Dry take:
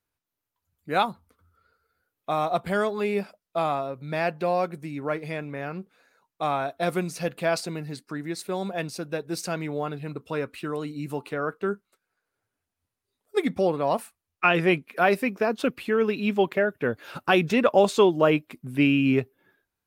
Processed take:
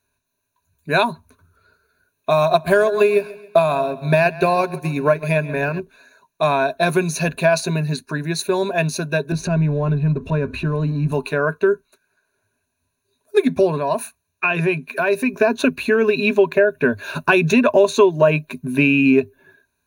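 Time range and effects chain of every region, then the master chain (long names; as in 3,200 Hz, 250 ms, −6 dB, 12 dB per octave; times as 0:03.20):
0:02.30–0:05.80: high-shelf EQ 11,000 Hz +8.5 dB + repeating echo 135 ms, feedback 40%, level −15 dB + transient designer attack +8 dB, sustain −5 dB
0:09.32–0:11.12: mu-law and A-law mismatch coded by mu + RIAA equalisation playback + downward compressor 2 to 1, threshold −33 dBFS
0:13.78–0:15.34: high-pass filter 54 Hz + downward compressor 2 to 1, threshold −32 dBFS
whole clip: EQ curve with evenly spaced ripples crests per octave 1.5, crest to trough 15 dB; downward compressor 2.5 to 1, threshold −22 dBFS; level +8.5 dB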